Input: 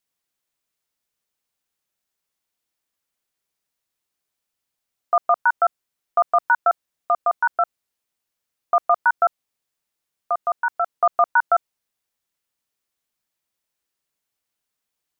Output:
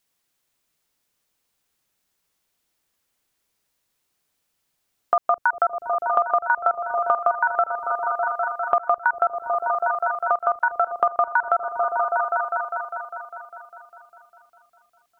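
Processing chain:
echo whose low-pass opens from repeat to repeat 201 ms, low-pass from 200 Hz, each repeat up 1 octave, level −3 dB
downward compressor 6 to 1, threshold −24 dBFS, peak gain reduction 11.5 dB
level +7 dB

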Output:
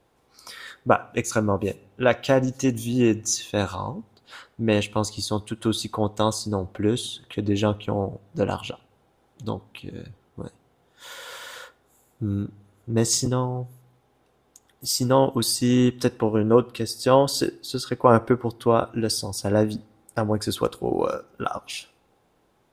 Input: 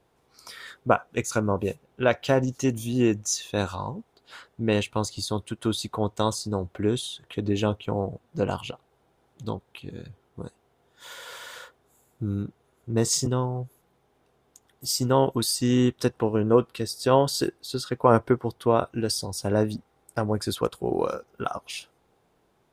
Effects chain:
on a send: low-shelf EQ 480 Hz −8.5 dB + convolution reverb RT60 0.60 s, pre-delay 4 ms, DRR 14.5 dB
on the sum: level +2 dB

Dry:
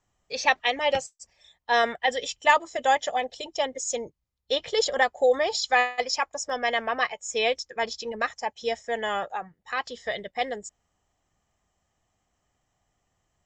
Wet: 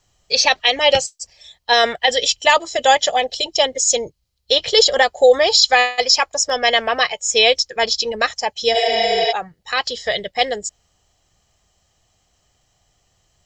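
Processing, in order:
notch filter 3,600 Hz, Q 13
healed spectral selection 0:08.77–0:09.29, 410–7,100 Hz before
graphic EQ with 10 bands 250 Hz −7 dB, 1,000 Hz −5 dB, 2,000 Hz −4 dB, 4,000 Hz +9 dB
boost into a limiter +13 dB
level −1 dB

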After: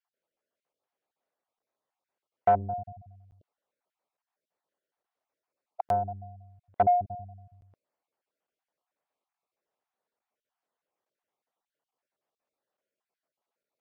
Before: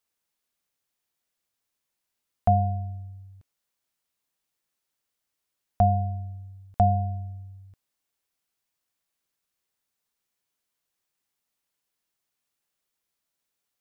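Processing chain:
time-frequency cells dropped at random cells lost 31%
soft clipping −21 dBFS, distortion −9 dB
resonant band-pass 610 Hz, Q 1.4
regular buffer underruns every 0.86 s, samples 512, zero, from 0:00.73
level +8.5 dB

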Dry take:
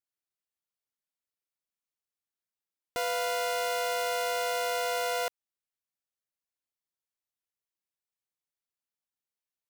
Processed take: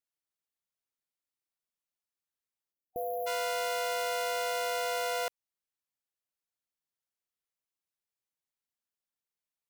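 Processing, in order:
time-frequency box erased 0:02.72–0:03.27, 750–11,000 Hz
level −2 dB

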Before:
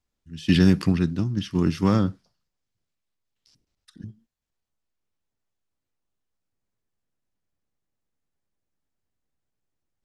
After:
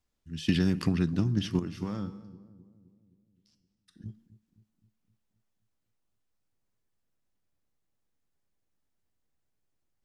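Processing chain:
downward compressor 12 to 1, threshold −21 dBFS, peak gain reduction 10 dB
0:01.59–0:04.06: tuned comb filter 68 Hz, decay 0.85 s, harmonics odd, mix 70%
feedback echo with a low-pass in the loop 260 ms, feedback 56%, low-pass 850 Hz, level −16.5 dB

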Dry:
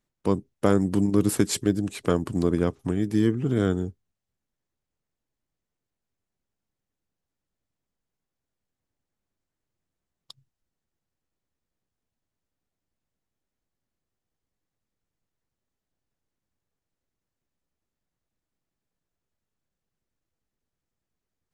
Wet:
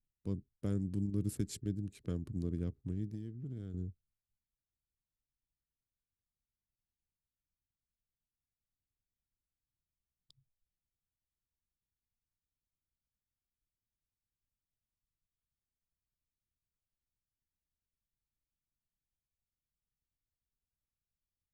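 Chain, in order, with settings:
adaptive Wiener filter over 15 samples
guitar amp tone stack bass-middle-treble 10-0-1
0:03.06–0:03.74: downward compressor 6 to 1, threshold −43 dBFS, peak gain reduction 10 dB
level +3 dB

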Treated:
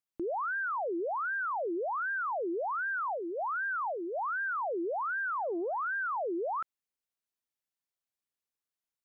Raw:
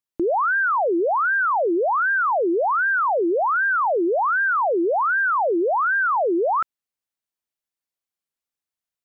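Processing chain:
0:03.08–0:04.38: low shelf with overshoot 680 Hz −10 dB, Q 1.5
brickwall limiter −25.5 dBFS, peak gain reduction 11 dB
0:05.10–0:06.11: highs frequency-modulated by the lows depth 0.14 ms
level −4.5 dB

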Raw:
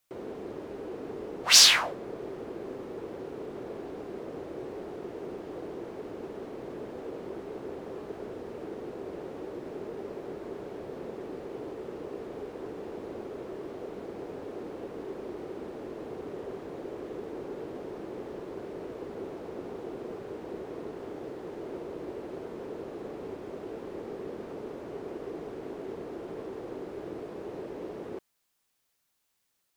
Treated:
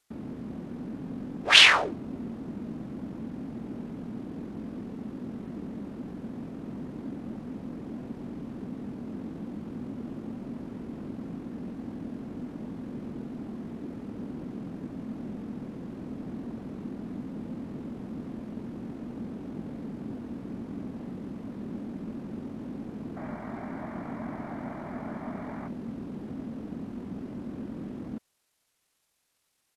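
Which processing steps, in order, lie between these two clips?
pitch shifter −9 semitones
gain on a spectral selection 0:23.17–0:25.67, 560–2,400 Hz +12 dB
level +2 dB

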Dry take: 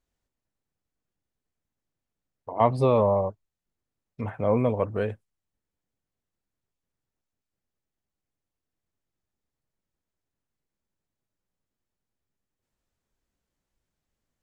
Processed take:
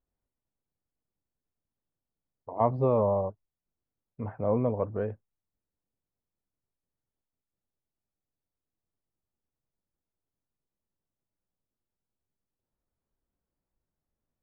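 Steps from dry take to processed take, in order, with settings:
low-pass filter 1,200 Hz 12 dB per octave
level −3.5 dB

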